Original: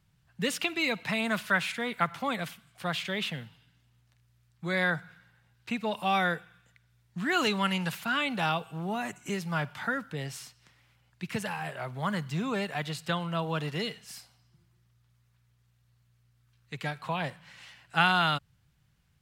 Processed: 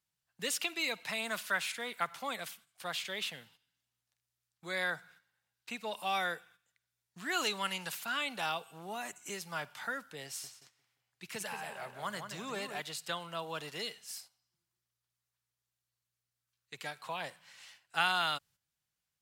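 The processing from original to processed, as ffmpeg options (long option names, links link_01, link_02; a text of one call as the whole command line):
ffmpeg -i in.wav -filter_complex "[0:a]asettb=1/sr,asplit=3[link_01][link_02][link_03];[link_01]atrim=end=10.264[link_04];[link_02]atrim=start=10.26:end=12.81,asetpts=PTS-STARTPTS,afade=type=in:duration=0.004:curve=qsin,afade=type=out:start_time=2.546:duration=0.004:curve=qsin,asplit=2[link_05][link_06];[link_06]adelay=176,lowpass=frequency=2900:poles=1,volume=-7dB,asplit=2[link_07][link_08];[link_08]adelay=176,lowpass=frequency=2900:poles=1,volume=0.45,asplit=2[link_09][link_10];[link_10]adelay=176,lowpass=frequency=2900:poles=1,volume=0.45,asplit=2[link_11][link_12];[link_12]adelay=176,lowpass=frequency=2900:poles=1,volume=0.45,asplit=2[link_13][link_14];[link_14]adelay=176,lowpass=frequency=2900:poles=1,volume=0.45[link_15];[link_05][link_07][link_09][link_11][link_13][link_15]amix=inputs=6:normalize=0,atrim=end_sample=112455[link_16];[link_03]atrim=start=12.806[link_17];[link_04][link_16]acrossfade=duration=0.004:curve1=hsin:curve2=qsin[link_18];[link_18][link_17]acrossfade=duration=0.004:curve1=qsin:curve2=hsin,agate=range=-9dB:threshold=-53dB:ratio=16:detection=peak,bass=frequency=250:gain=-14,treble=frequency=4000:gain=9,volume=-6.5dB" out.wav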